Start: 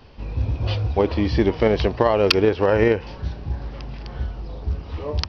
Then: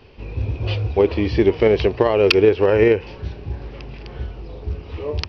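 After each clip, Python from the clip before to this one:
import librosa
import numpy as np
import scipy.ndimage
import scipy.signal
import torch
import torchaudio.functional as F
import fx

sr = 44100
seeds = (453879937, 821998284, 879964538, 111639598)

y = fx.graphic_eq_15(x, sr, hz=(100, 400, 2500), db=(4, 9, 8))
y = y * librosa.db_to_amplitude(-3.0)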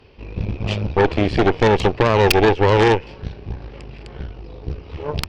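y = fx.cheby_harmonics(x, sr, harmonics=(8,), levels_db=(-12,), full_scale_db=-1.0)
y = y * librosa.db_to_amplitude(-2.0)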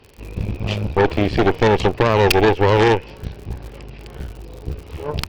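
y = fx.dmg_crackle(x, sr, seeds[0], per_s=73.0, level_db=-31.0)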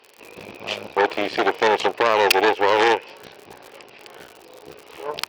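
y = scipy.signal.sosfilt(scipy.signal.butter(2, 530.0, 'highpass', fs=sr, output='sos'), x)
y = y * librosa.db_to_amplitude(1.0)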